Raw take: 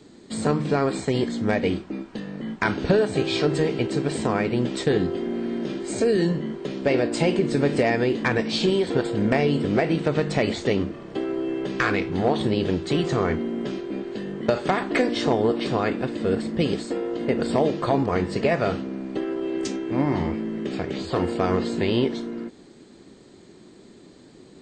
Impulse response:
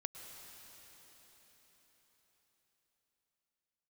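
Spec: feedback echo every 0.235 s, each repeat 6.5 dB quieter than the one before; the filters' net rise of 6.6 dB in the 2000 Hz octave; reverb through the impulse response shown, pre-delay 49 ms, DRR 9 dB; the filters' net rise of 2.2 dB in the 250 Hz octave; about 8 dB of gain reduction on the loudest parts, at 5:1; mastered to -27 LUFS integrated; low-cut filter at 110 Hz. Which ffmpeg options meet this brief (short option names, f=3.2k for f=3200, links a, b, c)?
-filter_complex "[0:a]highpass=110,equalizer=f=250:t=o:g=3,equalizer=f=2k:t=o:g=8,acompressor=threshold=-23dB:ratio=5,aecho=1:1:235|470|705|940|1175|1410:0.473|0.222|0.105|0.0491|0.0231|0.0109,asplit=2[a][b];[1:a]atrim=start_sample=2205,adelay=49[c];[b][c]afir=irnorm=-1:irlink=0,volume=-7dB[d];[a][d]amix=inputs=2:normalize=0,volume=-1.5dB"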